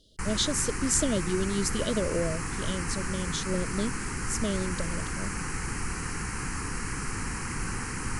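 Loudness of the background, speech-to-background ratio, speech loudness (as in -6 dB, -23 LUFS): -33.5 LUFS, 3.0 dB, -30.5 LUFS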